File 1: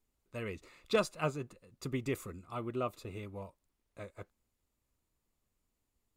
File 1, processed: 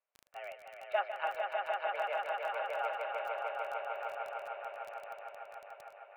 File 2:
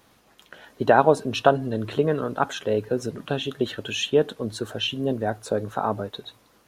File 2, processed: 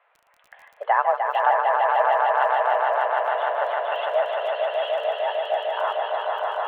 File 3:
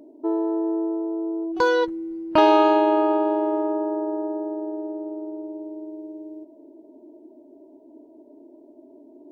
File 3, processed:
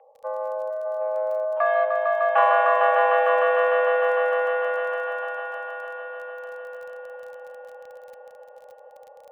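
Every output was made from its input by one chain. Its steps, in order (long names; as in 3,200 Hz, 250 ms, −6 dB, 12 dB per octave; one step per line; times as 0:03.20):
echo that builds up and dies away 151 ms, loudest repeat 5, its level −4 dB
in parallel at −10 dB: hard clipping −16.5 dBFS
on the sum: single-sideband voice off tune +190 Hz 380–2,500 Hz
surface crackle 27 per second −35 dBFS
level −4.5 dB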